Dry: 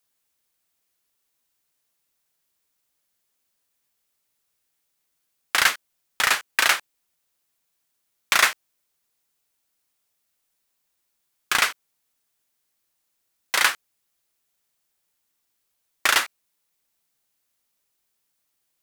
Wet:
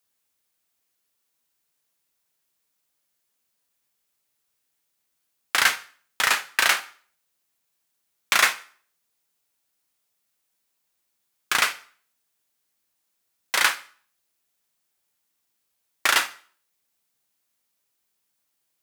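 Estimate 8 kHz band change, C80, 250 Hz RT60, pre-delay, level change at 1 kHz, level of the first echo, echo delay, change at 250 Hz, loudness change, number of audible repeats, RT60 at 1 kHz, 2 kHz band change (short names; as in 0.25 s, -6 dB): -0.5 dB, 21.0 dB, 0.45 s, 4 ms, -0.5 dB, none, none, -0.5 dB, -0.5 dB, none, 0.45 s, -0.5 dB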